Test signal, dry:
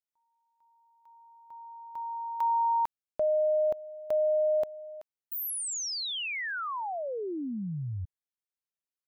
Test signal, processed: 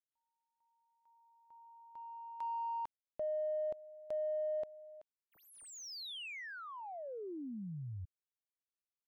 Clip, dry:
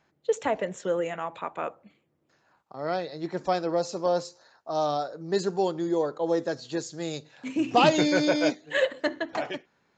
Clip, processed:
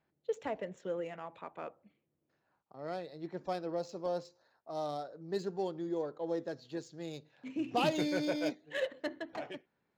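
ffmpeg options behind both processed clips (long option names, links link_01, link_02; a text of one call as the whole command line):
ffmpeg -i in.wav -af "equalizer=frequency=1200:width_type=o:width=1.6:gain=-4,adynamicsmooth=sensitivity=5.5:basefreq=3700,volume=-9dB" out.wav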